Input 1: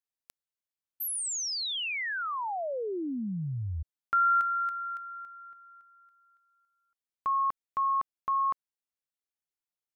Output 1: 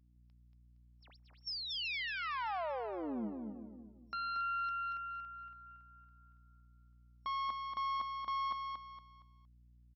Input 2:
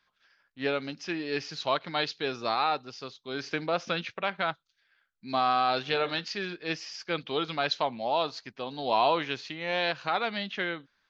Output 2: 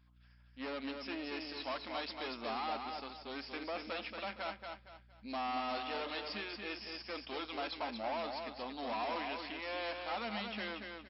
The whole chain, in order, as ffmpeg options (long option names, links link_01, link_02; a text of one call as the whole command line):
ffmpeg -i in.wav -af "aeval=exprs='(tanh(56.2*val(0)+0.7)-tanh(0.7))/56.2':channel_layout=same,afftfilt=real='re*between(b*sr/4096,200,5500)':imag='im*between(b*sr/4096,200,5500)':win_size=4096:overlap=0.75,aeval=exprs='val(0)+0.000501*(sin(2*PI*60*n/s)+sin(2*PI*2*60*n/s)/2+sin(2*PI*3*60*n/s)/3+sin(2*PI*4*60*n/s)/4+sin(2*PI*5*60*n/s)/5)':channel_layout=same,equalizer=frequency=400:width_type=o:width=0.67:gain=-8,equalizer=frequency=1600:width_type=o:width=0.67:gain=-5,equalizer=frequency=4000:width_type=o:width=0.67:gain=-5,aecho=1:1:232|464|696|928:0.562|0.18|0.0576|0.0184,volume=1dB" out.wav